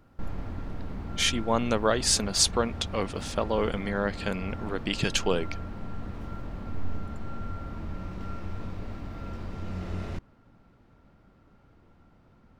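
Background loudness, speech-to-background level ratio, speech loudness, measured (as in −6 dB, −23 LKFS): −39.0 LKFS, 11.5 dB, −27.5 LKFS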